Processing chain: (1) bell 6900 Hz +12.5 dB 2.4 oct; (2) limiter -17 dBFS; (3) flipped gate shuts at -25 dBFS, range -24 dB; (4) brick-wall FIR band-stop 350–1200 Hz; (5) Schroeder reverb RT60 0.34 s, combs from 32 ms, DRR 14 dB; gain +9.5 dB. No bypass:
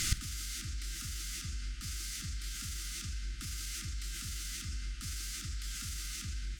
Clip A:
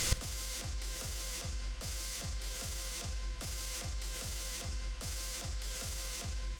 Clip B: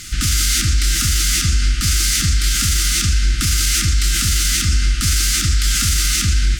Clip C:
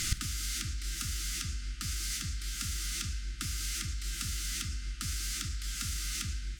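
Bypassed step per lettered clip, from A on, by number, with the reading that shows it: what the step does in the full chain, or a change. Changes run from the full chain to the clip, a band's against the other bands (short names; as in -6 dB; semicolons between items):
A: 4, 1 kHz band +6.0 dB; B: 3, crest factor change -14.0 dB; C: 2, mean gain reduction 3.5 dB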